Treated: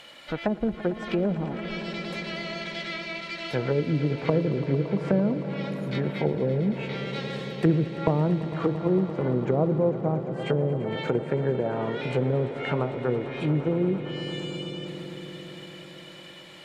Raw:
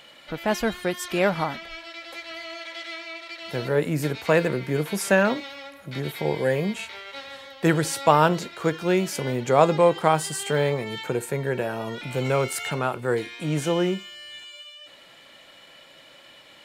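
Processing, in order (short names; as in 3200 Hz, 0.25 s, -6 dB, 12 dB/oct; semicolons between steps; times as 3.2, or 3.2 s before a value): treble ducked by the level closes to 340 Hz, closed at -20.5 dBFS; swelling echo 0.113 s, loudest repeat 5, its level -16 dB; gain +1.5 dB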